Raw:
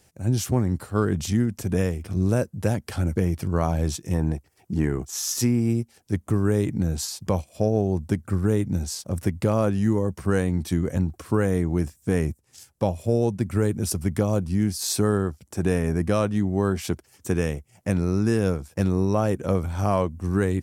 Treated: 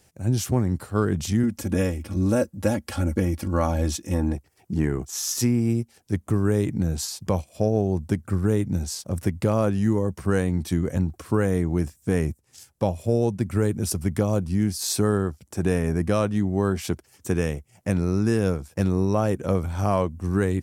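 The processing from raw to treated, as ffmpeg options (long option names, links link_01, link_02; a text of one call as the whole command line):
ffmpeg -i in.wav -filter_complex "[0:a]asettb=1/sr,asplit=3[link_01][link_02][link_03];[link_01]atrim=end=1.434[link_04];[link_02]atrim=start=1.43:end=4.35,asetpts=PTS-STARTPTS,afade=type=in:duration=0.004:curve=qsin,afade=type=out:start_time=2.916:duration=0.004:curve=qsin,aecho=1:1:3.6:0.75,atrim=end_sample=128772[link_05];[link_03]atrim=start=4.346[link_06];[link_04][link_05]acrossfade=duration=0.004:curve1=hsin:curve2=qsin[link_07];[link_07][link_06]acrossfade=duration=0.004:curve1=qsin:curve2=hsin" out.wav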